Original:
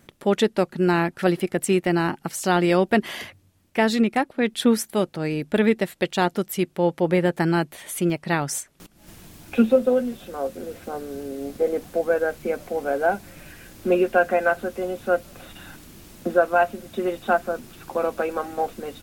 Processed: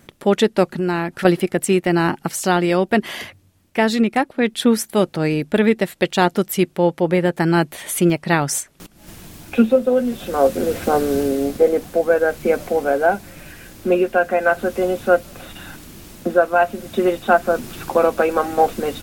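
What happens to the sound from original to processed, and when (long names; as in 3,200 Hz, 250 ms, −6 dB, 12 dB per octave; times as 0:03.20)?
0:00.67–0:01.25: downward compressor 2.5 to 1, threshold −31 dBFS
whole clip: speech leveller 0.5 s; level +5 dB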